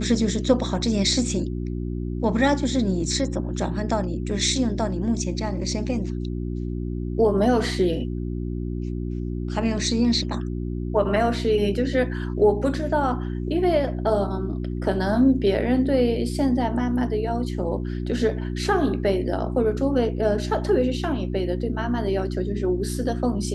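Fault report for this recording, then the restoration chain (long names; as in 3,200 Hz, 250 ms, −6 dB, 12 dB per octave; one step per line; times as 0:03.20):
mains hum 60 Hz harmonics 6 −28 dBFS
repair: hum removal 60 Hz, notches 6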